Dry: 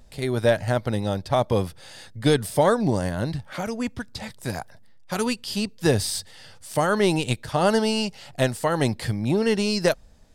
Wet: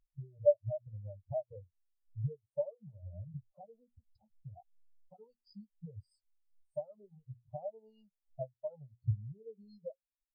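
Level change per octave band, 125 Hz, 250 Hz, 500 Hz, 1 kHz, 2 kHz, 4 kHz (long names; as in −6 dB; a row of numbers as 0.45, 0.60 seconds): −15.0 dB, −30.0 dB, −14.5 dB, −28.5 dB, below −40 dB, below −40 dB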